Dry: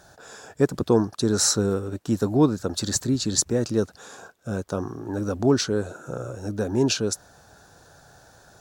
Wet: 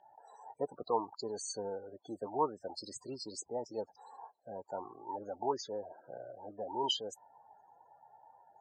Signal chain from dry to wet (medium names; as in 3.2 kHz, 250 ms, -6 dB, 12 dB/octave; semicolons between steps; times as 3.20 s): formant shift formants +2 st; loudest bins only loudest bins 32; two resonant band-passes 1.7 kHz, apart 1.8 oct; trim +4.5 dB